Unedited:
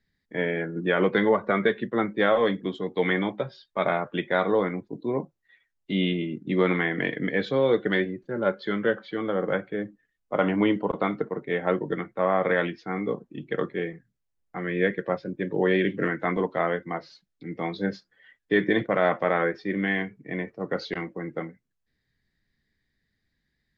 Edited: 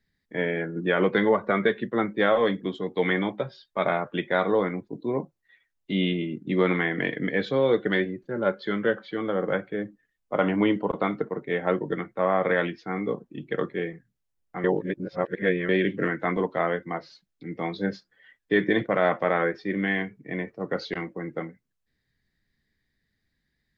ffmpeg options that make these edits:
-filter_complex "[0:a]asplit=3[a][b][c];[a]atrim=end=14.642[d];[b]atrim=start=14.638:end=15.692,asetpts=PTS-STARTPTS,areverse[e];[c]atrim=start=15.688[f];[d][e]acrossfade=d=0.004:c1=hsin:c2=hsin[g];[g][f]acrossfade=d=0.004:c1=hsin:c2=hsin"

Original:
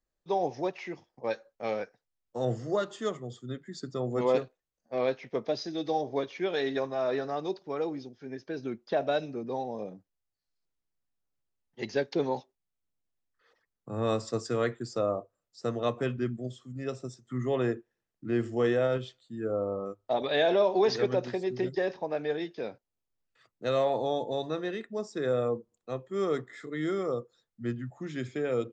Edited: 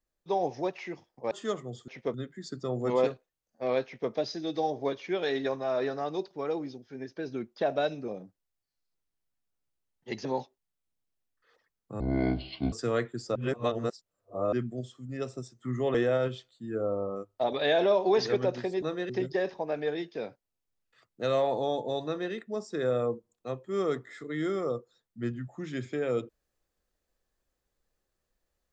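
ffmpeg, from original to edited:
-filter_complex "[0:a]asplit=13[a][b][c][d][e][f][g][h][i][j][k][l][m];[a]atrim=end=1.312[n];[b]atrim=start=2.878:end=3.452[o];[c]atrim=start=5.158:end=5.422[p];[d]atrim=start=3.448:end=9.392[q];[e]atrim=start=9.788:end=11.962[r];[f]atrim=start=12.218:end=13.974[s];[g]atrim=start=13.97:end=14.39,asetpts=PTS-STARTPTS,asetrate=25578,aresample=44100,atrim=end_sample=31934,asetpts=PTS-STARTPTS[t];[h]atrim=start=14.386:end=15.022[u];[i]atrim=start=15.018:end=16.192,asetpts=PTS-STARTPTS,areverse[v];[j]atrim=start=16.188:end=17.612[w];[k]atrim=start=18.638:end=21.522[x];[l]atrim=start=24.478:end=24.752[y];[m]atrim=start=21.518[z];[n][o]acrossfade=d=0.004:c1=hsin:c2=hsin[aa];[aa][p]acrossfade=d=0.004:c1=hsin:c2=hsin[ab];[ab][q]acrossfade=d=0.004:c1=hsin:c2=hsin[ac];[ac][r]acrossfade=d=0.004:c1=hsin:c2=hsin[ad];[ad][s]acrossfade=d=0.004:c1=hsin:c2=hsin[ae];[ae][t]acrossfade=d=0.004:c1=hsin:c2=hsin[af];[af][u]acrossfade=d=0.004:c1=hsin:c2=hsin[ag];[ag][v]acrossfade=d=0.004:c1=hsin:c2=hsin[ah];[ah][w]acrossfade=d=0.004:c1=hsin:c2=hsin[ai];[ai][x]acrossfade=d=0.004:c1=hsin:c2=hsin[aj];[aj][y]acrossfade=d=0.004:c1=hsin:c2=hsin[ak];[ak][z]acrossfade=d=0.004:c1=hsin:c2=hsin"

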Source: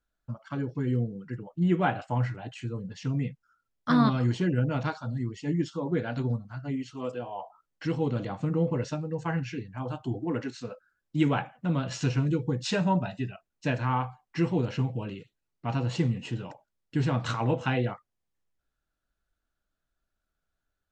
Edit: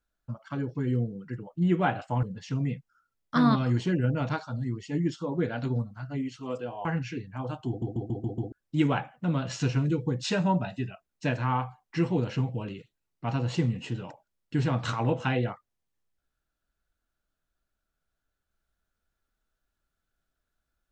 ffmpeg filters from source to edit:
-filter_complex "[0:a]asplit=9[a][b][c][d][e][f][g][h][i];[a]atrim=end=2.232[j];[b]atrim=start=2.768:end=7.392[k];[c]atrim=start=9.258:end=10.232[l];[d]atrim=start=10.088:end=10.232[m];[e]atrim=start=10.088:end=10.232[n];[f]atrim=start=10.088:end=10.232[o];[g]atrim=start=10.088:end=10.232[p];[h]atrim=start=10.088:end=10.232[q];[i]atrim=start=10.928[r];[j][k]acrossfade=d=0.004:c1=hsin:c2=hsin[s];[s][l]acrossfade=d=0.004:c1=hsin:c2=hsin[t];[t][m]acrossfade=d=0.004:c1=hsin:c2=hsin[u];[u][n]acrossfade=d=0.004:c1=hsin:c2=hsin[v];[v][o]acrossfade=d=0.004:c1=hsin:c2=hsin[w];[w][p]acrossfade=d=0.004:c1=hsin:c2=hsin[x];[x][q]acrossfade=d=0.004:c1=hsin:c2=hsin[y];[y][r]acrossfade=d=0.004:c1=hsin:c2=hsin"

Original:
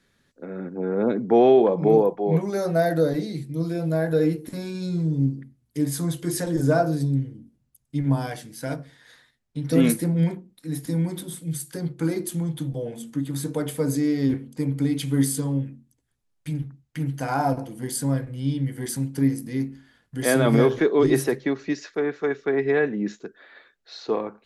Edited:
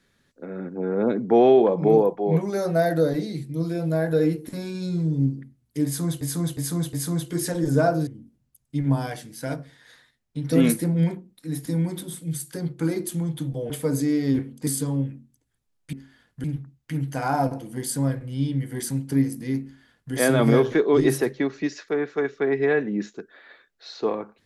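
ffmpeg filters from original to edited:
-filter_complex "[0:a]asplit=9[a][b][c][d][e][f][g][h][i];[a]atrim=end=6.212[j];[b]atrim=start=5.848:end=6.212[k];[c]atrim=start=5.848:end=6.212[l];[d]atrim=start=5.848:end=6.992[m];[e]atrim=start=7.268:end=12.902[n];[f]atrim=start=13.648:end=14.622[o];[g]atrim=start=15.238:end=16.502[p];[h]atrim=start=19.678:end=20.192[q];[i]atrim=start=16.498[r];[j][k]acrossfade=d=0.004:c1=hsin:c2=hsin[s];[s][l]acrossfade=d=0.004:c1=hsin:c2=hsin[t];[t][m]acrossfade=d=0.004:c1=hsin:c2=hsin[u];[u][n]acrossfade=d=0.004:c1=hsin:c2=hsin[v];[v][o]acrossfade=d=0.004:c1=hsin:c2=hsin[w];[w][p]acrossfade=d=0.004:c1=hsin:c2=hsin[x];[x][q]acrossfade=d=0.004:c1=hsin:c2=hsin[y];[y][r]acrossfade=d=0.004:c1=hsin:c2=hsin"

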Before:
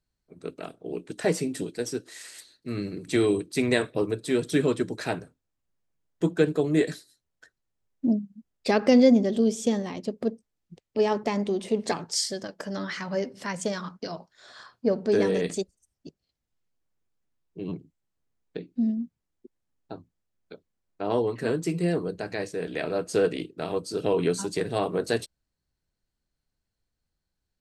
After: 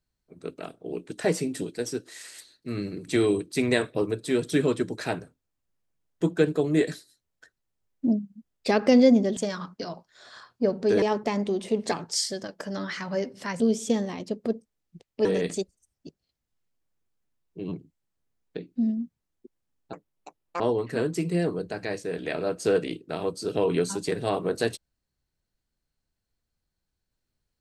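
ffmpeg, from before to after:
-filter_complex "[0:a]asplit=7[a][b][c][d][e][f][g];[a]atrim=end=9.372[h];[b]atrim=start=13.598:end=15.252[i];[c]atrim=start=11.018:end=13.602[j];[d]atrim=start=9.368:end=11.022[k];[e]atrim=start=15.248:end=19.934[l];[f]atrim=start=19.93:end=21.09,asetpts=PTS-STARTPTS,asetrate=76293,aresample=44100[m];[g]atrim=start=21.086[n];[h][i]acrossfade=d=0.004:c1=hsin:c2=hsin[o];[o][j]acrossfade=d=0.004:c1=hsin:c2=hsin[p];[p][k]acrossfade=d=0.004:c1=hsin:c2=hsin[q];[q][l]acrossfade=d=0.004:c1=hsin:c2=hsin[r];[r][m]acrossfade=d=0.004:c1=hsin:c2=hsin[s];[s][n]acrossfade=d=0.004:c1=hsin:c2=hsin"

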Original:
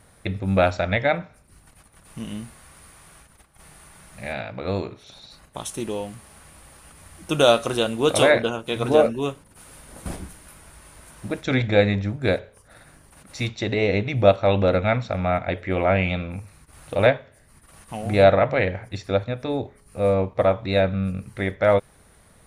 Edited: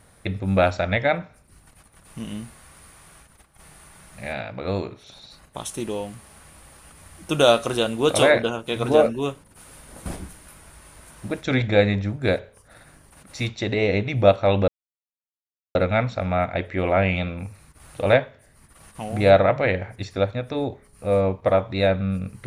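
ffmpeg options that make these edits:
-filter_complex "[0:a]asplit=2[a][b];[a]atrim=end=14.68,asetpts=PTS-STARTPTS,afade=t=out:st=14.676:d=0.004:c=hsin,apad=pad_dur=1.07[c];[b]atrim=start=14.68,asetpts=PTS-STARTPTS,afade=t=in:d=0.004:c=hsin[d];[c][d]concat=n=2:v=0:a=1"

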